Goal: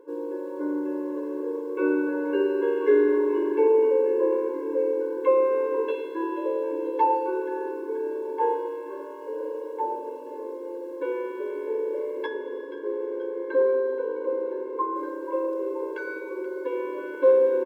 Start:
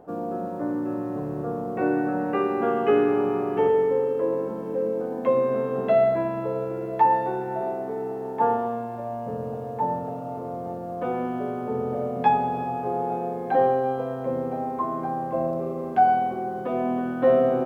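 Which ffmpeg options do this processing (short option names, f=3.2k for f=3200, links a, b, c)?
-filter_complex "[0:a]asettb=1/sr,asplit=3[a][b][c];[a]atrim=end=12.264[d];[b]atrim=start=12.26:end=14.96,asetpts=PTS-STARTPTS,afade=t=in:d=0.004:c=qsin,afade=t=out:st=2.696:d=0.004:c=qsin,lowpass=f=2.3k:p=1[e];[c]atrim=start=14.956[f];[d][e]acrossfade=d=0.004:c1=hsin:c2=qsin[g];[g][f]acrossfade=d=0.004:c1=qsin:c2=hsin,asplit=8[h][i][j][k][l][m][n][o];[i]adelay=480,afreqshift=-76,volume=-13.5dB[p];[j]adelay=960,afreqshift=-152,volume=-17.4dB[q];[k]adelay=1440,afreqshift=-228,volume=-21.3dB[r];[l]adelay=1920,afreqshift=-304,volume=-25.1dB[s];[m]adelay=2400,afreqshift=-380,volume=-29dB[t];[n]adelay=2880,afreqshift=-456,volume=-32.9dB[u];[o]adelay=3360,afreqshift=-532,volume=-36.8dB[v];[h][p][q][r][s][t][u][v]amix=inputs=8:normalize=0,afftfilt=real='re*eq(mod(floor(b*sr/1024/290),2),1)':imag='im*eq(mod(floor(b*sr/1024/290),2),1)':win_size=1024:overlap=0.75,volume=1.5dB"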